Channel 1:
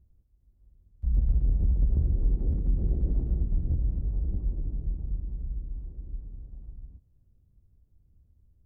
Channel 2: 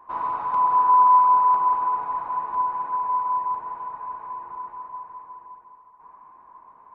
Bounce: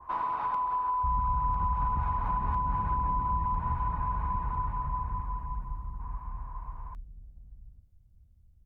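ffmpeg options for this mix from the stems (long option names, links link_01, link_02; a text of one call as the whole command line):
ffmpeg -i stem1.wav -i stem2.wav -filter_complex "[0:a]aecho=1:1:1.4:0.35,volume=-1dB,asplit=2[link_01][link_02];[link_02]volume=-8.5dB[link_03];[1:a]acompressor=threshold=-26dB:ratio=6,volume=1.5dB[link_04];[link_03]aecho=0:1:831:1[link_05];[link_01][link_04][link_05]amix=inputs=3:normalize=0,equalizer=frequency=410:width=1:gain=-4,acrossover=split=80|680[link_06][link_07][link_08];[link_06]acompressor=threshold=-35dB:ratio=4[link_09];[link_07]acompressor=threshold=-33dB:ratio=4[link_10];[link_08]acompressor=threshold=-32dB:ratio=4[link_11];[link_09][link_10][link_11]amix=inputs=3:normalize=0,adynamicequalizer=threshold=0.00447:dfrequency=1600:dqfactor=0.7:tfrequency=1600:tqfactor=0.7:attack=5:release=100:ratio=0.375:range=3:mode=boostabove:tftype=highshelf" out.wav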